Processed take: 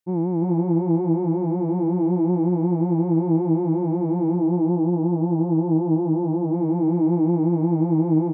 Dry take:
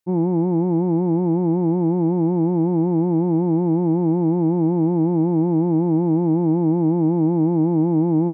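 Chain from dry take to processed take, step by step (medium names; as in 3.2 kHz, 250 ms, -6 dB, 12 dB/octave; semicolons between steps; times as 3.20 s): 4.36–6.54 s: Chebyshev low-pass 1 kHz, order 2; on a send: delay 345 ms -4 dB; on the sum: trim -3.5 dB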